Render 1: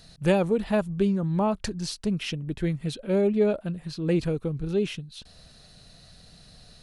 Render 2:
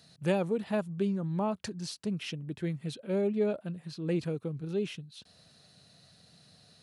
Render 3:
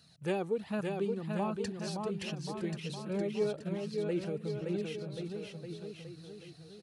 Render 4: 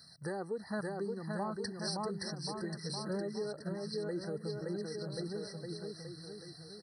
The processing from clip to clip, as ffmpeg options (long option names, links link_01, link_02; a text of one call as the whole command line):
ffmpeg -i in.wav -af "highpass=frequency=96:width=0.5412,highpass=frequency=96:width=1.3066,volume=-6.5dB" out.wav
ffmpeg -i in.wav -filter_complex "[0:a]flanger=delay=0.7:depth=2:regen=38:speed=1.3:shape=sinusoidal,asplit=2[link_01][link_02];[link_02]aecho=0:1:570|1083|1545|1960|2334:0.631|0.398|0.251|0.158|0.1[link_03];[link_01][link_03]amix=inputs=2:normalize=0" out.wav
ffmpeg -i in.wav -af "alimiter=level_in=6dB:limit=-24dB:level=0:latency=1:release=339,volume=-6dB,tiltshelf=frequency=1200:gain=-5,afftfilt=real='re*eq(mod(floor(b*sr/1024/2000),2),0)':imag='im*eq(mod(floor(b*sr/1024/2000),2),0)':win_size=1024:overlap=0.75,volume=4.5dB" out.wav